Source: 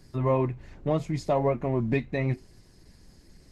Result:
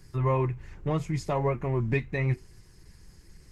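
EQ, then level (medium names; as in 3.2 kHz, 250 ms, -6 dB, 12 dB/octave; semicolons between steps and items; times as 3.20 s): fifteen-band graphic EQ 250 Hz -10 dB, 630 Hz -10 dB, 4 kHz -6 dB; +3.0 dB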